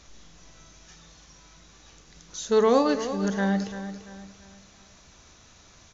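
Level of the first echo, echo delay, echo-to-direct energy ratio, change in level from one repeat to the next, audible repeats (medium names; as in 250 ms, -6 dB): -11.5 dB, 341 ms, -11.0 dB, -8.5 dB, 3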